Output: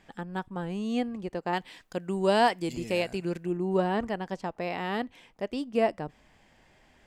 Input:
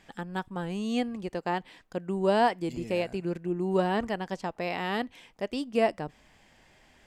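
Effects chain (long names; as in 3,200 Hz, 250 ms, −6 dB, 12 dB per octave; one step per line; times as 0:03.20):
high-shelf EQ 2,200 Hz −5 dB, from 0:01.53 +7 dB, from 0:03.57 −4.5 dB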